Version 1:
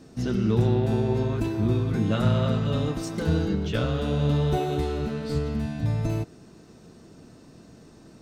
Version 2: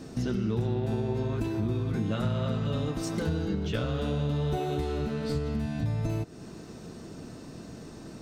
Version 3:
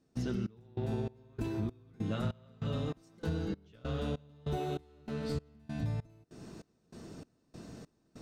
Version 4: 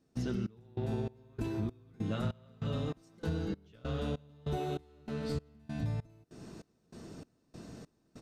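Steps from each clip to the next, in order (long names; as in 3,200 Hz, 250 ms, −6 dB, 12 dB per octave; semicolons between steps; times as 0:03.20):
downward compressor 3 to 1, threshold −36 dBFS, peak gain reduction 14.5 dB; level +6 dB
gate pattern "..xxxx.." 195 BPM −24 dB; level −5 dB
downsampling to 32,000 Hz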